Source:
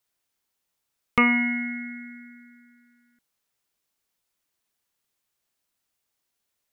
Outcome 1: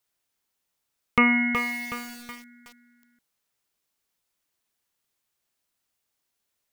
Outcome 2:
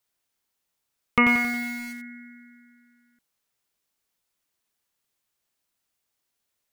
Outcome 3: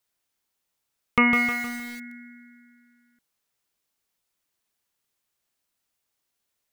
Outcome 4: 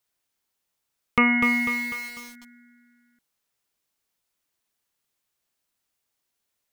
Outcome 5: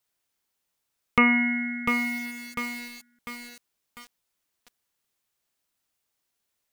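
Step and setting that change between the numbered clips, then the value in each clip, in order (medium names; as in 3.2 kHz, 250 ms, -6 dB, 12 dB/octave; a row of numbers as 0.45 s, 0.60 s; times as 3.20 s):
bit-crushed delay, time: 371 ms, 90 ms, 155 ms, 248 ms, 698 ms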